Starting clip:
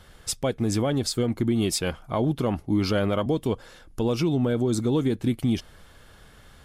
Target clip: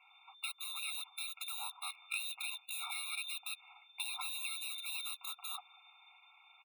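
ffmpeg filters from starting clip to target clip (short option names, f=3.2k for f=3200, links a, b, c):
-filter_complex "[0:a]acrossover=split=130|360[a][b][c];[a]acompressor=threshold=-37dB:ratio=4[d];[b]acompressor=threshold=-26dB:ratio=4[e];[c]acompressor=threshold=-34dB:ratio=4[f];[d][e][f]amix=inputs=3:normalize=0,asplit=6[g][h][i][j][k][l];[h]adelay=188,afreqshift=-36,volume=-20.5dB[m];[i]adelay=376,afreqshift=-72,volume=-24.8dB[n];[j]adelay=564,afreqshift=-108,volume=-29.1dB[o];[k]adelay=752,afreqshift=-144,volume=-33.4dB[p];[l]adelay=940,afreqshift=-180,volume=-37.7dB[q];[g][m][n][o][p][q]amix=inputs=6:normalize=0,lowpass=f=3.1k:t=q:w=0.5098,lowpass=f=3.1k:t=q:w=0.6013,lowpass=f=3.1k:t=q:w=0.9,lowpass=f=3.1k:t=q:w=2.563,afreqshift=-3600,acrossover=split=370|550|2600[r][s][t][u];[u]acrusher=bits=4:mix=0:aa=0.5[v];[r][s][t][v]amix=inputs=4:normalize=0,afftfilt=real='re*eq(mod(floor(b*sr/1024/710),2),1)':imag='im*eq(mod(floor(b*sr/1024/710),2),1)':win_size=1024:overlap=0.75"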